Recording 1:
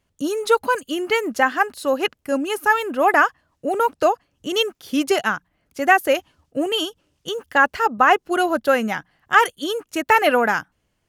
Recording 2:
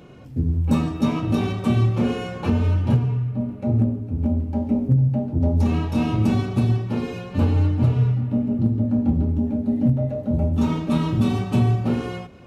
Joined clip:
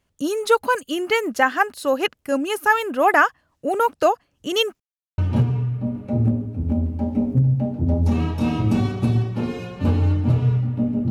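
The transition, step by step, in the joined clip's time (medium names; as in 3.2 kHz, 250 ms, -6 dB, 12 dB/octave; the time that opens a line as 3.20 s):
recording 1
4.80–5.18 s: mute
5.18 s: go over to recording 2 from 2.72 s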